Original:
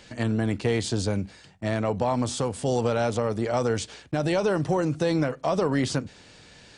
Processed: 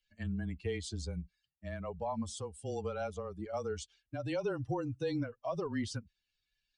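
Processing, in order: expander on every frequency bin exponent 2; frequency shift -22 Hz; trim -8 dB

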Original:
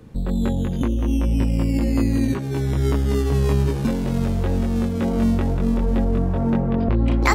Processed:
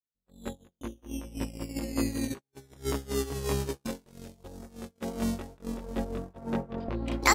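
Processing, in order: tone controls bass -9 dB, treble +9 dB; speakerphone echo 230 ms, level -19 dB; gate -23 dBFS, range -56 dB; 4.10–4.69 s: peaking EQ 730 Hz -> 3.4 kHz -8.5 dB 0.78 oct; trim -3.5 dB

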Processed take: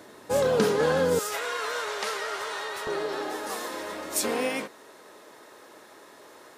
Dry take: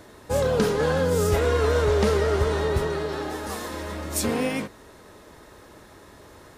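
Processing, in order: high-pass 190 Hz 12 dB/octave, from 1.19 s 1 kHz, from 2.87 s 350 Hz

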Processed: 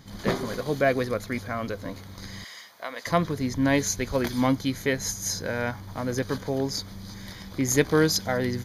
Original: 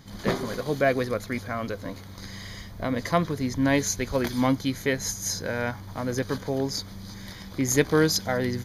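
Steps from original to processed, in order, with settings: 2.44–3.07 s: high-pass 790 Hz 12 dB/octave

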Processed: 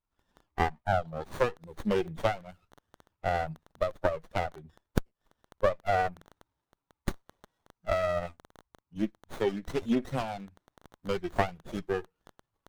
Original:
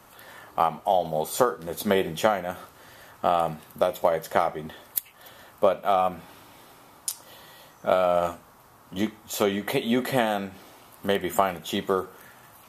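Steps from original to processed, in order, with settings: expander on every frequency bin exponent 2; crackle 18 per s -40 dBFS; sliding maximum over 17 samples

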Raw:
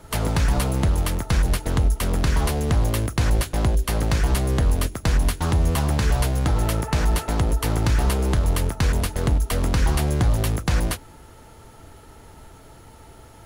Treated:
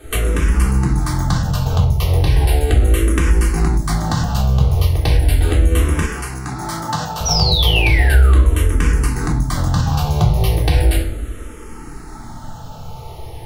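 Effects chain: 7.25–8.48 s: painted sound fall 890–6000 Hz -24 dBFS; simulated room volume 660 m³, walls furnished, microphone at 3.6 m; compression 3:1, threshold -18 dBFS, peak gain reduction 10.5 dB; 6.05–7.21 s: high-pass 370 Hz 6 dB/octave; level rider gain up to 3 dB; barber-pole phaser -0.36 Hz; trim +5.5 dB

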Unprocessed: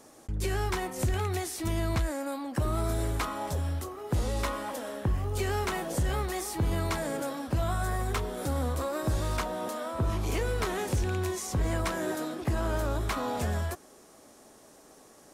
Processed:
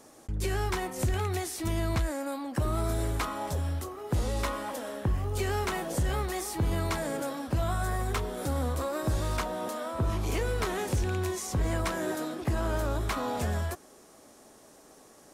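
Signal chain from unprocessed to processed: no audible change

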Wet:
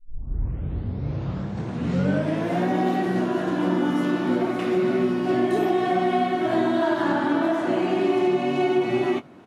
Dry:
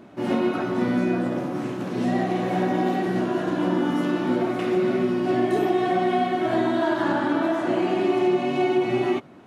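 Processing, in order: tape start-up on the opening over 2.69 s; doubling 21 ms -13 dB

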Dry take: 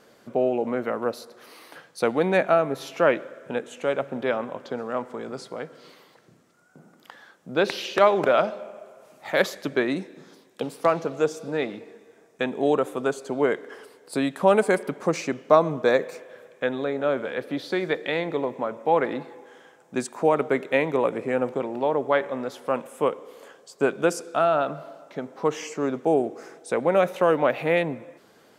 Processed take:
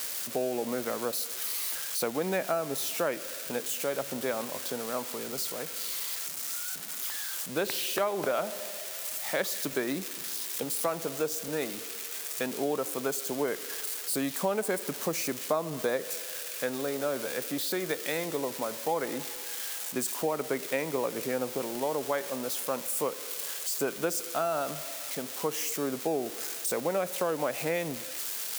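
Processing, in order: zero-crossing glitches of -19.5 dBFS; compression 3:1, threshold -22 dBFS, peak gain reduction 9 dB; trim -4.5 dB

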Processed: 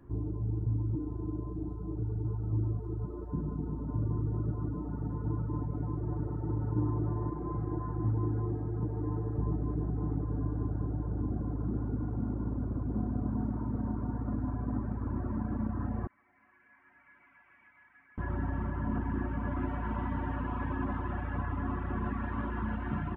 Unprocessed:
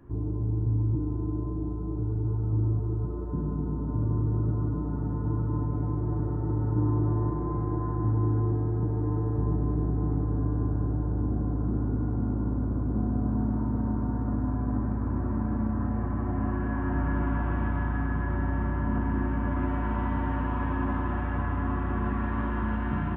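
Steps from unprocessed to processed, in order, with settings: reverb removal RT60 0.97 s; 16.07–18.18 s: band-pass filter 2.2 kHz, Q 9.6; trim -2.5 dB

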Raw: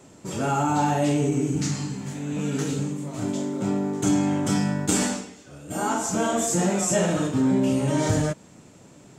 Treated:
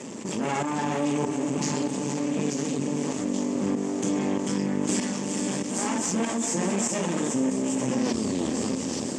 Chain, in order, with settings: tape stop on the ending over 1.39 s; reverb removal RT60 0.56 s; on a send: echo that smears into a reverb 472 ms, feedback 64%, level -9 dB; on the sum: half-wave rectifier; tremolo saw up 1.6 Hz, depth 75%; feedback echo behind a high-pass 875 ms, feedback 62%, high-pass 4.9 kHz, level -8 dB; level rider gain up to 8 dB; cabinet simulation 200–8300 Hz, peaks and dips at 230 Hz +10 dB, 710 Hz -6 dB, 1.4 kHz -9 dB, 4 kHz -6 dB; level flattener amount 70%; trim -8 dB

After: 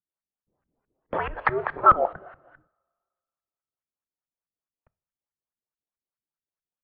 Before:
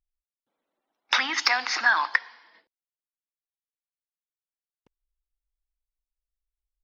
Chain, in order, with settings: LFO low-pass saw up 4.7 Hz 380–2000 Hz; two-slope reverb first 0.47 s, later 1.8 s, from -22 dB, DRR 19 dB; mistuned SSB -350 Hz 150–3500 Hz

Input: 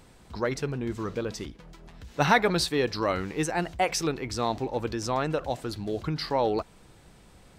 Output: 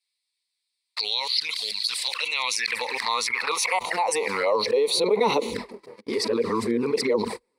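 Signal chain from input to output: reverse the whole clip; gate -43 dBFS, range -53 dB; touch-sensitive flanger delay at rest 11.3 ms, full sweep at -25 dBFS; high-pass sweep 3.5 kHz -> 350 Hz, 1.91–5.31 s; rippled EQ curve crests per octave 0.92, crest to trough 12 dB; level flattener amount 70%; trim -6.5 dB

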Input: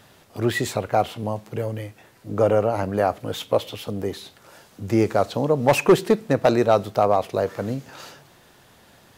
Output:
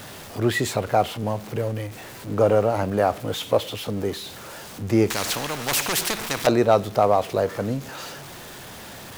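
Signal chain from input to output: jump at every zero crossing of -35.5 dBFS; 5.10–6.47 s: spectrum-flattening compressor 4:1

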